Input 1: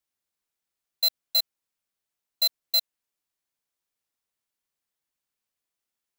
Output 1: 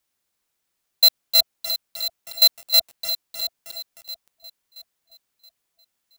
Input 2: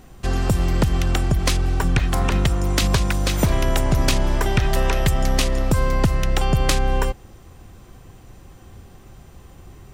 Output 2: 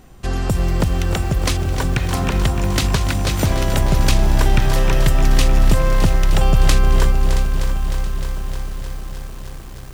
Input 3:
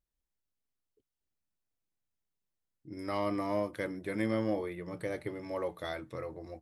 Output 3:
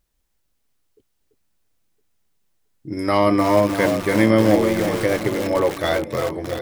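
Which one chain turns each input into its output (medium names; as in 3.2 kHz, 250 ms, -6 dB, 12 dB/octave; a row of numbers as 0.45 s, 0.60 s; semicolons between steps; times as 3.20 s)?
on a send: echo whose repeats swap between lows and highs 337 ms, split 830 Hz, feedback 61%, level -8 dB; on the sum: bit-crushed delay 307 ms, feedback 80%, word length 6-bit, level -9.5 dB; normalise loudness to -19 LUFS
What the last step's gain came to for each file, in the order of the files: +9.0 dB, 0.0 dB, +16.0 dB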